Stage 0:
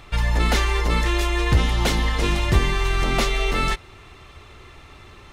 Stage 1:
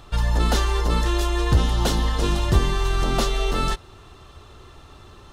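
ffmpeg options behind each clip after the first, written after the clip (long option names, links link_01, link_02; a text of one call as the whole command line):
ffmpeg -i in.wav -af "equalizer=frequency=2200:width_type=o:width=0.48:gain=-13" out.wav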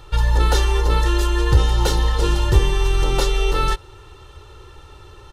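ffmpeg -i in.wav -af "aecho=1:1:2.2:0.77" out.wav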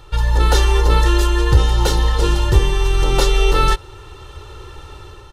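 ffmpeg -i in.wav -af "dynaudnorm=framelen=170:gausssize=5:maxgain=6.5dB" out.wav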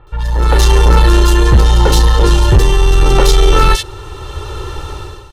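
ffmpeg -i in.wav -filter_complex "[0:a]acrossover=split=2400[link_01][link_02];[link_02]adelay=70[link_03];[link_01][link_03]amix=inputs=2:normalize=0,asoftclip=type=tanh:threshold=-10.5dB,dynaudnorm=framelen=180:gausssize=5:maxgain=12.5dB" out.wav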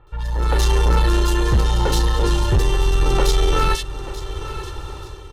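ffmpeg -i in.wav -af "aecho=1:1:885|1770|2655:0.2|0.0638|0.0204,volume=-8dB" out.wav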